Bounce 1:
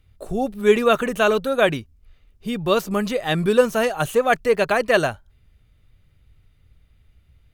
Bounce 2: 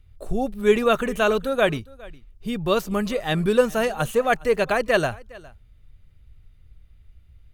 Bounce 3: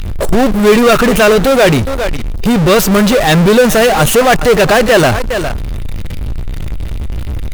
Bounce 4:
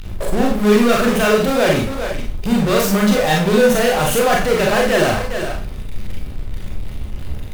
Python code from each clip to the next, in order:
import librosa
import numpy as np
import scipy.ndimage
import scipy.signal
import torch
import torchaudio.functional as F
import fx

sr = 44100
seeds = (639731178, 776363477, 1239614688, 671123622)

y1 = fx.low_shelf(x, sr, hz=69.0, db=11.5)
y1 = y1 + 10.0 ** (-22.5 / 20.0) * np.pad(y1, (int(410 * sr / 1000.0), 0))[:len(y1)]
y1 = y1 * librosa.db_to_amplitude(-2.5)
y2 = fx.power_curve(y1, sr, exponent=0.35)
y2 = y2 * librosa.db_to_amplitude(4.5)
y3 = fx.rev_schroeder(y2, sr, rt60_s=0.37, comb_ms=30, drr_db=-1.5)
y3 = y3 * librosa.db_to_amplitude(-10.5)